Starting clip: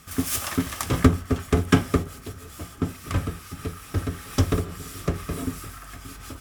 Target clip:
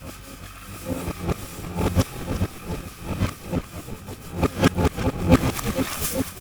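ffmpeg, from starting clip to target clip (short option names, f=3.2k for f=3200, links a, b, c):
-filter_complex "[0:a]areverse,asplit=2[a][b];[b]asetrate=88200,aresample=44100,atempo=0.5,volume=-3dB[c];[a][c]amix=inputs=2:normalize=0,asplit=6[d][e][f][g][h][i];[e]adelay=350,afreqshift=-47,volume=-12dB[j];[f]adelay=700,afreqshift=-94,volume=-18.9dB[k];[g]adelay=1050,afreqshift=-141,volume=-25.9dB[l];[h]adelay=1400,afreqshift=-188,volume=-32.8dB[m];[i]adelay=1750,afreqshift=-235,volume=-39.7dB[n];[d][j][k][l][m][n]amix=inputs=6:normalize=0,volume=-1dB"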